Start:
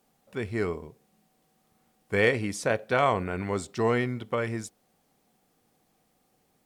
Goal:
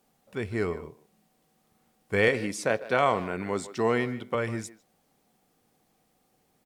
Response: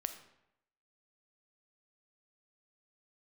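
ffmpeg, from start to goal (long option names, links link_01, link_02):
-filter_complex "[0:a]asettb=1/sr,asplit=3[link_01][link_02][link_03];[link_01]atrim=end=2.284[link_04];[link_02]atrim=start=2.28:end=4.35,asetpts=PTS-STARTPTS,afade=type=in:duration=0.004:curve=qsin,afade=type=out:start_time=2.066:duration=0.004:curve=qsin,highpass=140[link_05];[link_03]atrim=start=4.346[link_06];[link_04][link_05]acrossfade=duration=0.004:curve1=hsin:curve2=qsin[link_07];[link_07][link_06]acrossfade=duration=0.004:curve1=qsin:curve2=hsin,asplit=2[link_08][link_09];[link_09]adelay=150,highpass=300,lowpass=3400,asoftclip=type=hard:threshold=-19dB,volume=-15dB[link_10];[link_08][link_10]amix=inputs=2:normalize=0"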